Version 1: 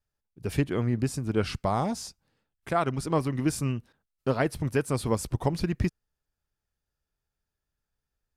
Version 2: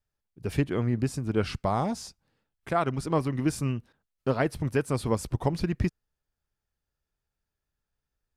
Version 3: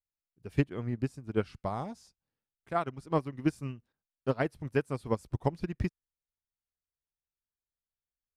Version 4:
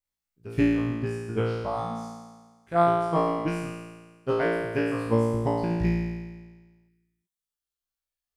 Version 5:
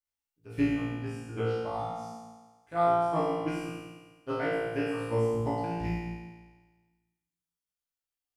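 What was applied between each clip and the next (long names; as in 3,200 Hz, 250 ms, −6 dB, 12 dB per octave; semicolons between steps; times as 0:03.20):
high-shelf EQ 5,600 Hz −4.5 dB
expander for the loud parts 2.5 to 1, over −32 dBFS
reverb reduction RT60 1.9 s; on a send: flutter between parallel walls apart 3 metres, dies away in 1.4 s
low-shelf EQ 420 Hz −5 dB; feedback delay network reverb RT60 0.85 s, low-frequency decay 1.5×, high-frequency decay 0.8×, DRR −1.5 dB; level −7 dB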